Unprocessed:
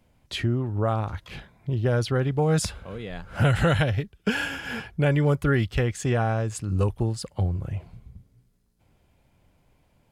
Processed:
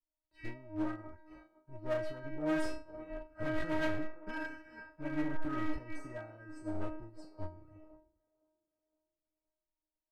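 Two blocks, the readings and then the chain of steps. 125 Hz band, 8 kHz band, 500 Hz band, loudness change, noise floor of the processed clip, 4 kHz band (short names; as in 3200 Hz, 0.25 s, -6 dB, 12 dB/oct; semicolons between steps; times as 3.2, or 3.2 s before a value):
-25.0 dB, under -20 dB, -13.0 dB, -14.0 dB, under -85 dBFS, -19.5 dB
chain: one diode to ground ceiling -17.5 dBFS; low shelf 62 Hz +9.5 dB; in parallel at -1.5 dB: limiter -20.5 dBFS, peak gain reduction 9 dB; on the sum: sample leveller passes 1; running mean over 13 samples; metallic resonator 310 Hz, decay 0.84 s, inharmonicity 0.002; hard clip -39.5 dBFS, distortion -12 dB; on a send: band-limited delay 0.514 s, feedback 46%, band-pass 590 Hz, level -5.5 dB; on the sum: upward expander 2.5:1, over -60 dBFS; gain +13 dB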